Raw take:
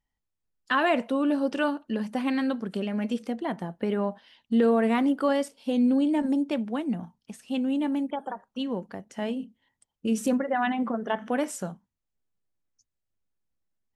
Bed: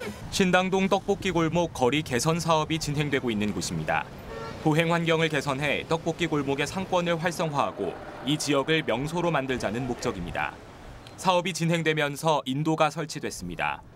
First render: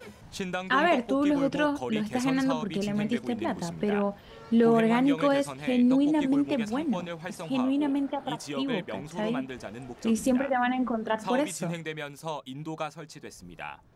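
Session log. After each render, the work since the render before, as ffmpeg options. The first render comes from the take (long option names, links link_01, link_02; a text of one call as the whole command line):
ffmpeg -i in.wav -i bed.wav -filter_complex "[1:a]volume=-11dB[link_01];[0:a][link_01]amix=inputs=2:normalize=0" out.wav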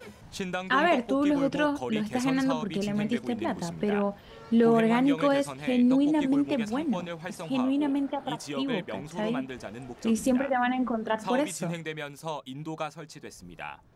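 ffmpeg -i in.wav -af anull out.wav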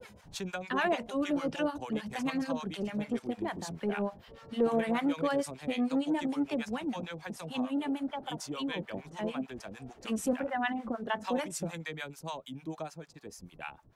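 ffmpeg -i in.wav -filter_complex "[0:a]acrossover=split=710[link_01][link_02];[link_01]aeval=exprs='val(0)*(1-1/2+1/2*cos(2*PI*6.7*n/s))':channel_layout=same[link_03];[link_02]aeval=exprs='val(0)*(1-1/2-1/2*cos(2*PI*6.7*n/s))':channel_layout=same[link_04];[link_03][link_04]amix=inputs=2:normalize=0,acrossover=split=350|670|1600[link_05][link_06][link_07][link_08];[link_05]asoftclip=type=tanh:threshold=-30dB[link_09];[link_09][link_06][link_07][link_08]amix=inputs=4:normalize=0" out.wav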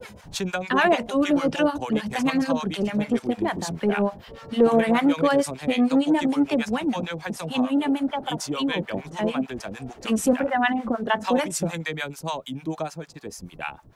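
ffmpeg -i in.wav -af "volume=10dB" out.wav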